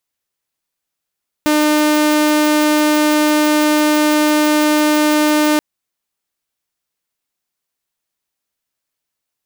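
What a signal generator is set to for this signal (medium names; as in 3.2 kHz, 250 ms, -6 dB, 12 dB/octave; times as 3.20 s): tone saw 302 Hz -8.5 dBFS 4.13 s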